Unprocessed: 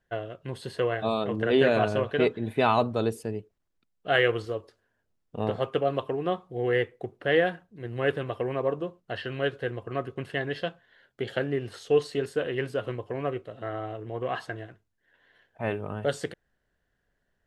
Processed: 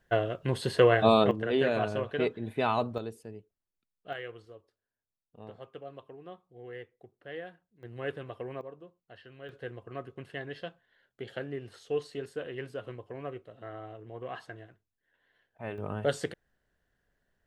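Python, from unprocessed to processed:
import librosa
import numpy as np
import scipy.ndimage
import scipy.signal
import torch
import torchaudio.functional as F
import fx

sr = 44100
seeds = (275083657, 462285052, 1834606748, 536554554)

y = fx.gain(x, sr, db=fx.steps((0.0, 6.0), (1.31, -5.5), (2.98, -12.0), (4.13, -18.5), (7.83, -9.5), (8.61, -18.0), (9.49, -9.0), (15.78, -1.0)))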